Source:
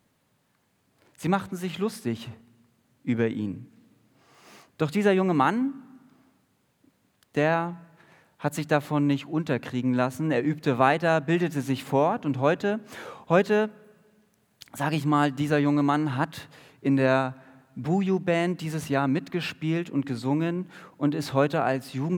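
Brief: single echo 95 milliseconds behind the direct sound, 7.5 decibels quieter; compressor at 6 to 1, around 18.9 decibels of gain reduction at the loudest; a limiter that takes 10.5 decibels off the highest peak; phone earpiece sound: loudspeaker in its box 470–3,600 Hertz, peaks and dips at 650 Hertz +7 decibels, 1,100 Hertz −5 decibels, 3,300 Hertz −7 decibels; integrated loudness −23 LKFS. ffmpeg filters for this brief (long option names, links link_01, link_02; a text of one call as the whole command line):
ffmpeg -i in.wav -af "acompressor=threshold=-37dB:ratio=6,alimiter=level_in=7.5dB:limit=-24dB:level=0:latency=1,volume=-7.5dB,highpass=470,equalizer=frequency=650:width_type=q:width=4:gain=7,equalizer=frequency=1100:width_type=q:width=4:gain=-5,equalizer=frequency=3300:width_type=q:width=4:gain=-7,lowpass=frequency=3600:width=0.5412,lowpass=frequency=3600:width=1.3066,aecho=1:1:95:0.422,volume=23.5dB" out.wav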